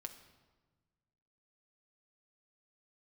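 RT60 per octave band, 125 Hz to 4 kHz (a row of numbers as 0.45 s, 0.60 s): 2.0 s, 1.8 s, 1.4 s, 1.3 s, 1.0 s, 0.95 s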